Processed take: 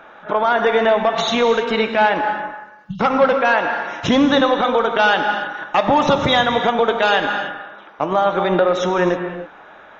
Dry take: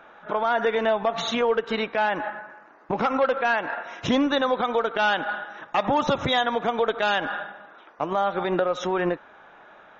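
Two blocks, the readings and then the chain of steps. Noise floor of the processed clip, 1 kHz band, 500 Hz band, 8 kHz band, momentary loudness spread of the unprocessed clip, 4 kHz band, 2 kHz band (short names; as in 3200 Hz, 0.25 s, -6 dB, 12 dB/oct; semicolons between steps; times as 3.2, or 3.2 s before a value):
-43 dBFS, +7.5 dB, +7.5 dB, n/a, 9 LU, +7.5 dB, +7.5 dB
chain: spectral delete 2.63–3, 210–2700 Hz; non-linear reverb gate 0.34 s flat, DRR 6 dB; gain +6.5 dB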